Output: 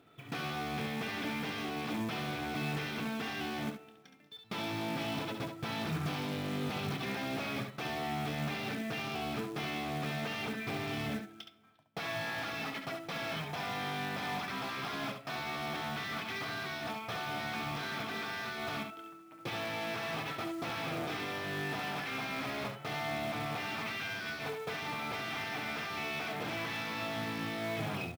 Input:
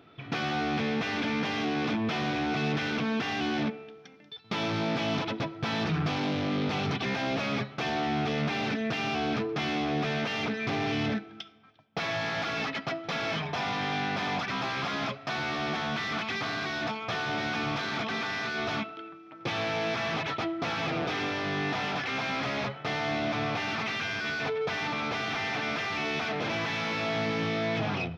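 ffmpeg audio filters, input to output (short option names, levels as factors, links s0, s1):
-af "aecho=1:1:26|69:0.237|0.473,acrusher=bits=4:mode=log:mix=0:aa=0.000001,volume=0.422"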